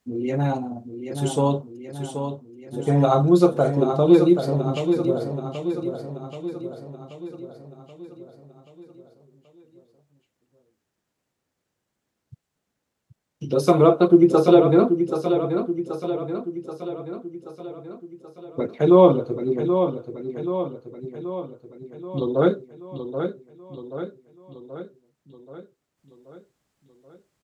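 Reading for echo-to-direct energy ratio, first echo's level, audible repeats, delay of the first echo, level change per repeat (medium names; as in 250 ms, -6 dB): -6.5 dB, -8.0 dB, 6, 780 ms, -5.0 dB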